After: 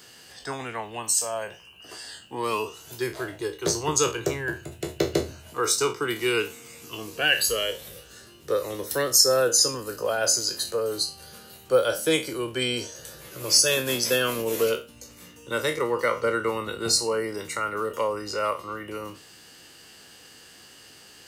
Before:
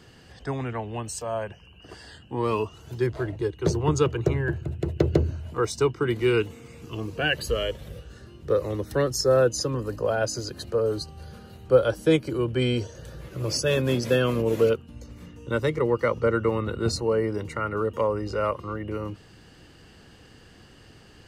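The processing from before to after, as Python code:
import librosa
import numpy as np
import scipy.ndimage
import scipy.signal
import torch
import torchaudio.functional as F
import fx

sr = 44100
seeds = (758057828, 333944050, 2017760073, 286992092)

y = fx.spec_trails(x, sr, decay_s=0.3)
y = fx.riaa(y, sr, side='recording')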